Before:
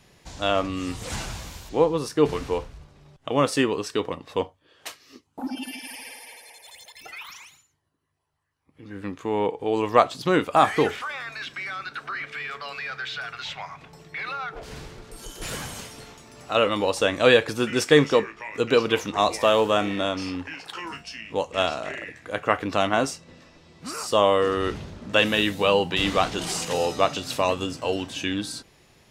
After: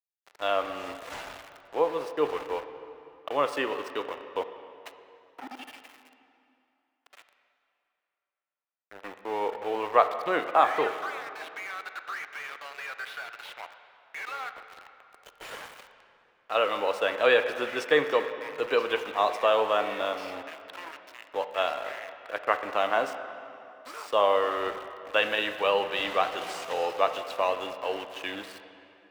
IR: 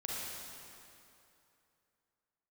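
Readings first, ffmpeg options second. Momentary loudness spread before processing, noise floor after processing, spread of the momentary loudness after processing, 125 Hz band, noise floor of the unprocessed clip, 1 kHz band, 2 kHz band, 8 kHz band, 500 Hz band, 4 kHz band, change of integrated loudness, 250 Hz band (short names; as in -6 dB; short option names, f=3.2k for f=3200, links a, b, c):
19 LU, -80 dBFS, 20 LU, under -20 dB, -62 dBFS, -2.0 dB, -3.5 dB, -14.5 dB, -4.5 dB, -7.0 dB, -4.0 dB, -13.0 dB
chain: -filter_complex "[0:a]aeval=exprs='val(0)*gte(abs(val(0)),0.0266)':c=same,acrossover=split=410 3500:gain=0.1 1 0.251[a][b][c];[a][b][c]amix=inputs=3:normalize=0,asplit=2[d][e];[1:a]atrim=start_sample=2205,lowpass=3.3k[f];[e][f]afir=irnorm=-1:irlink=0,volume=-8.5dB[g];[d][g]amix=inputs=2:normalize=0,volume=-4dB"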